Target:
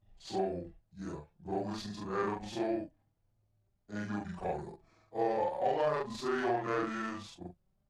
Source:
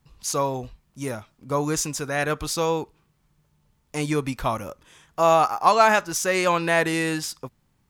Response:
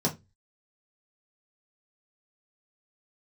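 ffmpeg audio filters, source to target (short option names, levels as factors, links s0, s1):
-filter_complex "[0:a]afftfilt=real='re':imag='-im':win_size=4096:overlap=0.75,asplit=2[s0][s1];[s1]adynamicsmooth=sensitivity=4:basefreq=1600,volume=1.41[s2];[s0][s2]amix=inputs=2:normalize=0,asetrate=30296,aresample=44100,atempo=1.45565,highshelf=f=5100:g=-6,acrossover=split=83|340[s3][s4][s5];[s3]acompressor=threshold=0.00562:ratio=4[s6];[s4]acompressor=threshold=0.0282:ratio=4[s7];[s5]acompressor=threshold=0.126:ratio=4[s8];[s6][s7][s8]amix=inputs=3:normalize=0,flanger=delay=4.8:depth=1.4:regen=44:speed=0.49:shape=sinusoidal,volume=0.447"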